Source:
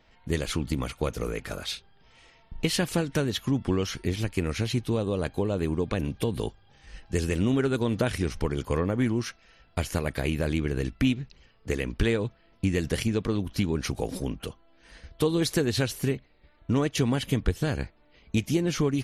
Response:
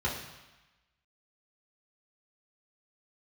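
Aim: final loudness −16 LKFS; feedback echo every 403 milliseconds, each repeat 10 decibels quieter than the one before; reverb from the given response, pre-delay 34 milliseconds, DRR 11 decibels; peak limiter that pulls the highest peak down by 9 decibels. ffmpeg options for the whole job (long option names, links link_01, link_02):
-filter_complex "[0:a]alimiter=limit=-19.5dB:level=0:latency=1,aecho=1:1:403|806|1209|1612:0.316|0.101|0.0324|0.0104,asplit=2[link_01][link_02];[1:a]atrim=start_sample=2205,adelay=34[link_03];[link_02][link_03]afir=irnorm=-1:irlink=0,volume=-19dB[link_04];[link_01][link_04]amix=inputs=2:normalize=0,volume=14.5dB"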